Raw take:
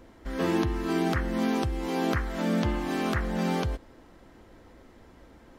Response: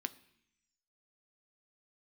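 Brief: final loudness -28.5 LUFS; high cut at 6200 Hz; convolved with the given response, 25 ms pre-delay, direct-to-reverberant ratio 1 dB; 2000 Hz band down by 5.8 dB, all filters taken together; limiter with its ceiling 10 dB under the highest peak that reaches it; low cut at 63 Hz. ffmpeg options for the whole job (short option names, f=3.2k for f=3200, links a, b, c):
-filter_complex "[0:a]highpass=63,lowpass=6.2k,equalizer=f=2k:t=o:g=-7.5,alimiter=limit=-23.5dB:level=0:latency=1,asplit=2[a][b];[1:a]atrim=start_sample=2205,adelay=25[c];[b][c]afir=irnorm=-1:irlink=0,volume=-0.5dB[d];[a][d]amix=inputs=2:normalize=0,volume=2.5dB"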